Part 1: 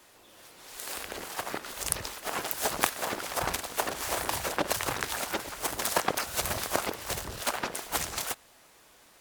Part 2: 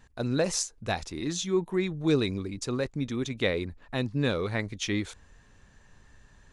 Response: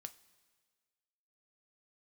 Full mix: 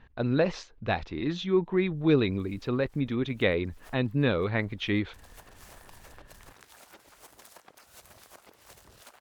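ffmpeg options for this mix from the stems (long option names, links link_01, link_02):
-filter_complex "[0:a]acompressor=threshold=-33dB:ratio=12,adelay=1600,volume=-15.5dB[link_01];[1:a]lowpass=frequency=3500:width=0.5412,lowpass=frequency=3500:width=1.3066,volume=2dB,asplit=2[link_02][link_03];[link_03]apad=whole_len=476570[link_04];[link_01][link_04]sidechaincompress=threshold=-47dB:ratio=5:attack=27:release=138[link_05];[link_05][link_02]amix=inputs=2:normalize=0"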